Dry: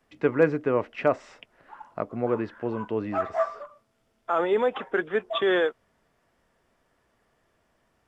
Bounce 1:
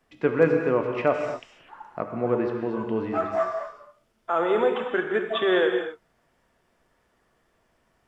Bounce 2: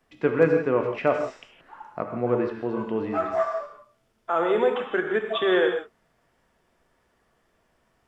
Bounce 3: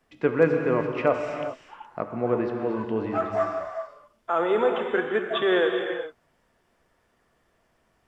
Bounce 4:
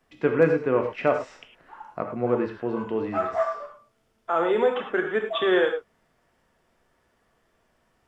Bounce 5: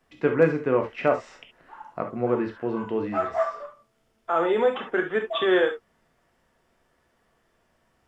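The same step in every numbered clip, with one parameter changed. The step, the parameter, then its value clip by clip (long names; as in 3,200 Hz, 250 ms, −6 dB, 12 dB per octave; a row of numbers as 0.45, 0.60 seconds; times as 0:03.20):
reverb whose tail is shaped and stops, gate: 280, 190, 440, 130, 90 milliseconds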